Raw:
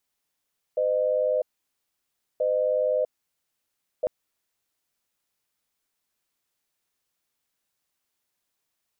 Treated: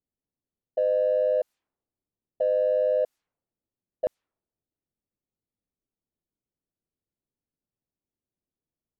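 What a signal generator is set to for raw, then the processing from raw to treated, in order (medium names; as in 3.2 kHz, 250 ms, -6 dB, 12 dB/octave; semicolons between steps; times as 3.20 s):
cadence 510 Hz, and 610 Hz, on 0.65 s, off 0.98 s, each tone -23.5 dBFS 3.30 s
level-controlled noise filter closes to 340 Hz, open at -26 dBFS; in parallel at -11 dB: saturation -30.5 dBFS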